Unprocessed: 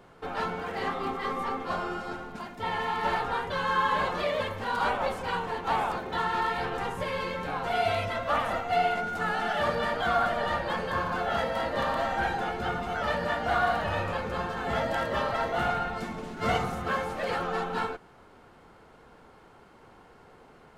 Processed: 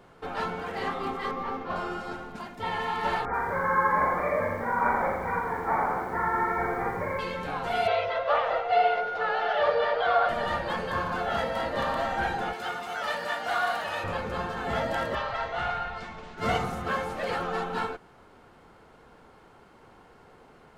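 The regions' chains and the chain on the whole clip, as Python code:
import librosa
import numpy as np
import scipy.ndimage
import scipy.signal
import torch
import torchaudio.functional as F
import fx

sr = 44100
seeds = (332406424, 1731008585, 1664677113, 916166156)

y = fx.chain(x, sr, fx.mod_noise(seeds[0], snr_db=14),
    fx.air_absorb(metres=280.0), at=(1.31, 1.76))
y = fx.chain(y, sr, fx.brickwall_lowpass(high_hz=2400.0),
    fx.doubler(ms=42.0, db=-6.5),
    fx.echo_crushed(ms=85, feedback_pct=55, bits=9, wet_db=-5.0), at=(3.25, 7.19))
y = fx.chain(y, sr, fx.lowpass(hz=4700.0, slope=24),
    fx.low_shelf_res(hz=350.0, db=-10.5, q=3.0), at=(7.87, 10.29))
y = fx.chain(y, sr, fx.highpass(hz=700.0, slope=6),
    fx.high_shelf(hz=4800.0, db=7.0), at=(12.53, 14.04))
y = fx.chain(y, sr, fx.lowpass(hz=5000.0, slope=12),
    fx.peak_eq(hz=260.0, db=-12.0, octaves=1.8), at=(15.15, 16.38))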